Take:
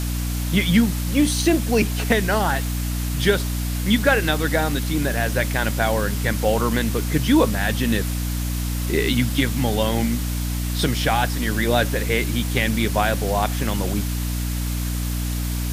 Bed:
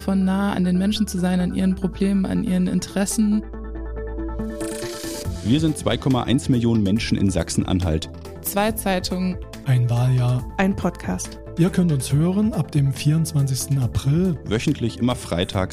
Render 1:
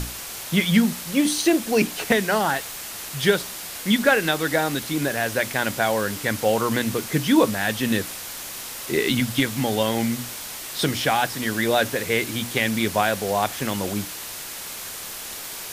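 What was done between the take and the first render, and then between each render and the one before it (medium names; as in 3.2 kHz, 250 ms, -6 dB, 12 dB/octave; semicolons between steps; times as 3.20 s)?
hum notches 60/120/180/240/300 Hz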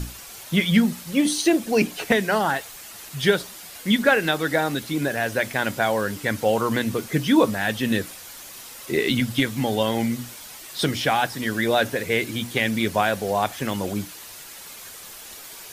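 noise reduction 8 dB, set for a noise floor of -35 dBFS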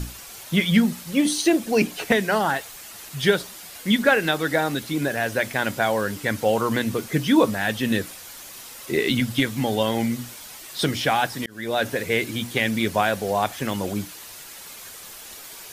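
11.46–11.91 s: fade in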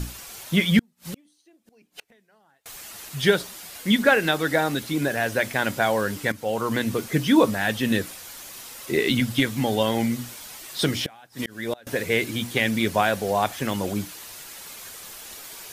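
0.79–2.66 s: inverted gate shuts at -22 dBFS, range -39 dB; 6.32–7.06 s: fade in equal-power, from -13 dB; 10.97–11.87 s: inverted gate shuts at -14 dBFS, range -27 dB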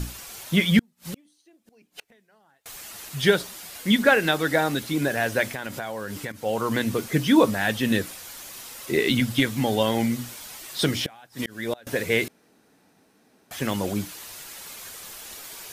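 5.44–6.38 s: compression, threshold -28 dBFS; 12.28–13.51 s: room tone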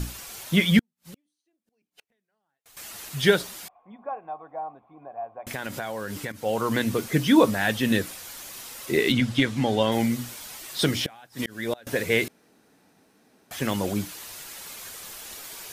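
0.77–2.77 s: upward expansion, over -49 dBFS; 3.68–5.47 s: cascade formant filter a; 9.12–9.92 s: distance through air 57 m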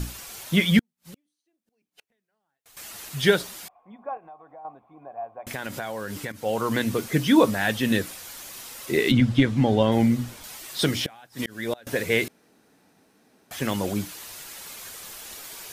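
4.17–4.65 s: compression 2.5:1, threshold -46 dBFS; 9.11–10.44 s: tilt EQ -2 dB/octave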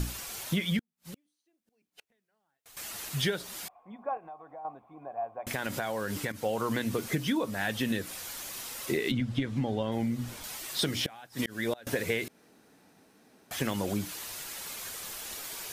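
compression 12:1, threshold -26 dBFS, peak gain reduction 15 dB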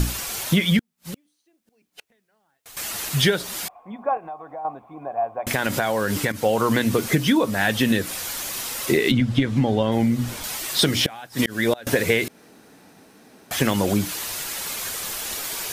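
trim +10.5 dB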